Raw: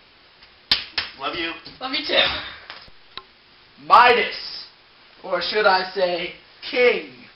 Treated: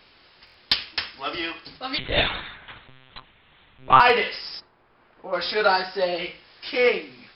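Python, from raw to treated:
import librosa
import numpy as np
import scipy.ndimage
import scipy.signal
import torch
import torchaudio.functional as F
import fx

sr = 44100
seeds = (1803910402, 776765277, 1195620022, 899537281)

y = fx.lpc_monotone(x, sr, seeds[0], pitch_hz=130.0, order=10, at=(1.98, 4.0))
y = fx.lowpass(y, sr, hz=fx.line((4.59, 1100.0), (5.32, 1600.0)), slope=12, at=(4.59, 5.32), fade=0.02)
y = fx.buffer_glitch(y, sr, at_s=(0.45,), block=1024, repeats=3)
y = y * 10.0 ** (-3.0 / 20.0)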